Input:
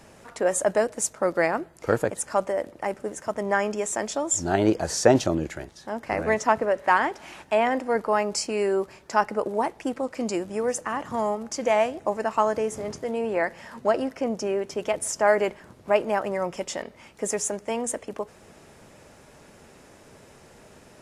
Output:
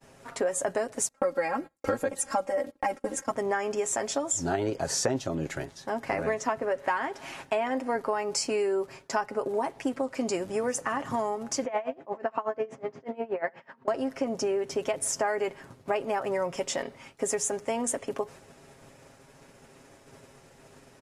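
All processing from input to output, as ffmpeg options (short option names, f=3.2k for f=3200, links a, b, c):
-filter_complex "[0:a]asettb=1/sr,asplit=3[a][b][c];[a]atrim=end=1.084[d];[b]atrim=start=1.08:end=3.31,asetpts=PTS-STARTPTS,afade=t=in:d=0.004:c=qsin,afade=t=out:st=2.226:d=0.004:c=qsin,agate=range=-24dB:threshold=-43dB:ratio=16:release=100:detection=peak,aecho=1:1:3.7:0.97,atrim=end_sample=98343[e];[c]atrim=start=3.306[f];[d][e]acrossfade=d=0.004:c1=hsin:c2=qsin[g];[g][f]acrossfade=d=0.004:c1=qsin:c2=hsin,asettb=1/sr,asplit=3[h][i][j];[h]atrim=end=11.654[k];[i]atrim=start=11.65:end=13.88,asetpts=PTS-STARTPTS,afade=t=in:d=0.004:c=qsin,afade=t=out:st=2.226:d=0.004:c=qsin,highpass=170,lowpass=2.5k,aecho=1:1:71:0.188,atrim=end_sample=98343,aeval=exprs='val(0)*pow(10,-23*(0.5-0.5*cos(2*PI*8.3*n/s))/20)':c=same[l];[j]atrim=start=13.876[m];[k][l]acrossfade=d=0.004:c1=hsin:c2=qsin[n];[n][m]acrossfade=d=0.004:c1=qsin:c2=hsin,aecho=1:1:7.4:0.52,acompressor=threshold=-26dB:ratio=6,agate=range=-33dB:threshold=-44dB:ratio=3:detection=peak,volume=1dB"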